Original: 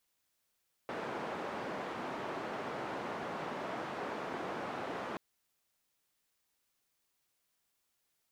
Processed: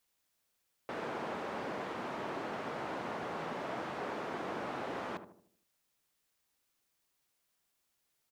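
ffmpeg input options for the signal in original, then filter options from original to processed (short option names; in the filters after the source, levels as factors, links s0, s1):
-f lavfi -i "anoisesrc=c=white:d=4.28:r=44100:seed=1,highpass=f=190,lowpass=f=1000,volume=-21.3dB"
-filter_complex "[0:a]asplit=2[s0][s1];[s1]adelay=77,lowpass=f=870:p=1,volume=0.398,asplit=2[s2][s3];[s3]adelay=77,lowpass=f=870:p=1,volume=0.5,asplit=2[s4][s5];[s5]adelay=77,lowpass=f=870:p=1,volume=0.5,asplit=2[s6][s7];[s7]adelay=77,lowpass=f=870:p=1,volume=0.5,asplit=2[s8][s9];[s9]adelay=77,lowpass=f=870:p=1,volume=0.5,asplit=2[s10][s11];[s11]adelay=77,lowpass=f=870:p=1,volume=0.5[s12];[s0][s2][s4][s6][s8][s10][s12]amix=inputs=7:normalize=0"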